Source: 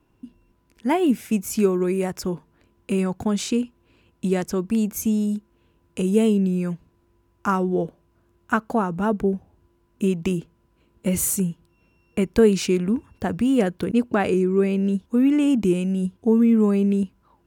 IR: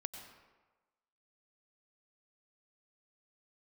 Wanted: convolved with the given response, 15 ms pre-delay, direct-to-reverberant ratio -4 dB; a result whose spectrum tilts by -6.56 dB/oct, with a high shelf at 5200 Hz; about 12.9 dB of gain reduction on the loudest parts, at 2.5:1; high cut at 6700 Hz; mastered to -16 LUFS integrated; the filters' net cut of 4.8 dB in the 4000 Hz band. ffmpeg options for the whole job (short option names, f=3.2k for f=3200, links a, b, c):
-filter_complex "[0:a]lowpass=6.7k,equalizer=f=4k:t=o:g=-4,highshelf=f=5.2k:g=-5.5,acompressor=threshold=-32dB:ratio=2.5,asplit=2[a][b];[1:a]atrim=start_sample=2205,adelay=15[c];[b][c]afir=irnorm=-1:irlink=0,volume=6dB[d];[a][d]amix=inputs=2:normalize=0,volume=10.5dB"